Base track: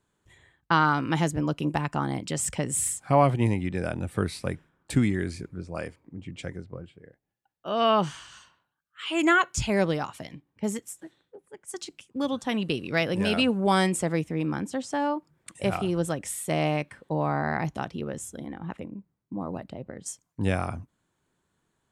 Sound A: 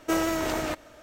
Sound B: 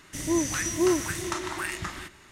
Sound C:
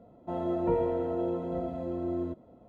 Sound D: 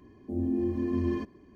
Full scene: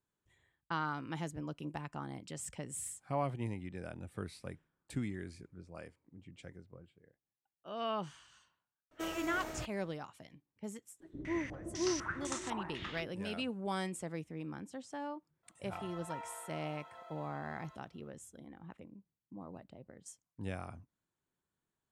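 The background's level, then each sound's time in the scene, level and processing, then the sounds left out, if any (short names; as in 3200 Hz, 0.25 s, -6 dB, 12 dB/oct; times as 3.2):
base track -15 dB
8.91 add A -14.5 dB + mismatched tape noise reduction decoder only
11 add B -11.5 dB + stepped low-pass 4 Hz 370–7900 Hz
15.43 add C -0.5 dB + HPF 1100 Hz 24 dB/oct
not used: D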